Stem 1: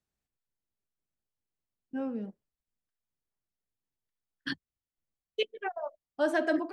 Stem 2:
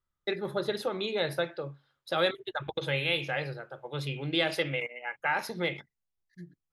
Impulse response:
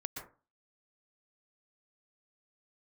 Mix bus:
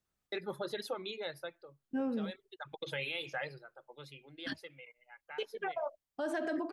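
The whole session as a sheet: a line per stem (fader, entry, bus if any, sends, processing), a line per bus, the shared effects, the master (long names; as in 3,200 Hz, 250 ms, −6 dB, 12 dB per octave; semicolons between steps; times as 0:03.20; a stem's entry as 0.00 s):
+1.5 dB, 0.00 s, no send, downward compressor, threshold −27 dBFS, peak gain reduction 5.5 dB
−1.5 dB, 0.05 s, no send, high-pass filter 260 Hz 6 dB per octave; reverb reduction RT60 1.1 s; automatic ducking −17 dB, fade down 1.20 s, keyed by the first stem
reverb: not used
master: brickwall limiter −27.5 dBFS, peak gain reduction 9 dB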